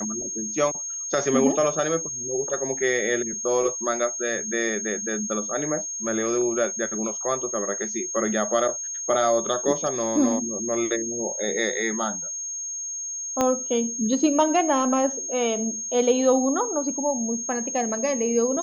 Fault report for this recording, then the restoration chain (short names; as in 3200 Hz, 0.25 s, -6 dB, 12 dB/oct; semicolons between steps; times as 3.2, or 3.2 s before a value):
tone 6500 Hz -29 dBFS
13.41 pop -9 dBFS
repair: de-click; notch 6500 Hz, Q 30